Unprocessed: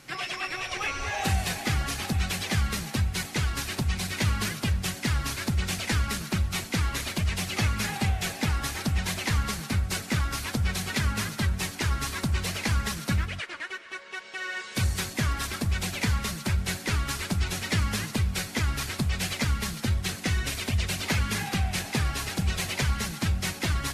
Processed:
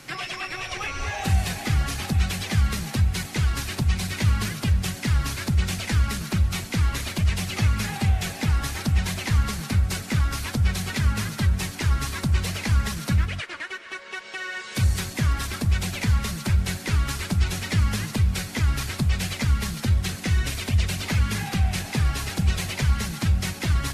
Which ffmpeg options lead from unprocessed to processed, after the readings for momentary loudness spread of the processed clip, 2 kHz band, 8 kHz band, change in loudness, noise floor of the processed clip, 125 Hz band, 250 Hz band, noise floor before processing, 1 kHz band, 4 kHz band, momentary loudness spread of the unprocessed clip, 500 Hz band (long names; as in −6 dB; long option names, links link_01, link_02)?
2 LU, +0.5 dB, 0.0 dB, +3.5 dB, −38 dBFS, +5.5 dB, +2.5 dB, −41 dBFS, +0.5 dB, +0.5 dB, 2 LU, +0.5 dB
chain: -filter_complex "[0:a]acrossover=split=180[link_01][link_02];[link_02]acompressor=threshold=-39dB:ratio=2[link_03];[link_01][link_03]amix=inputs=2:normalize=0,volume=6dB"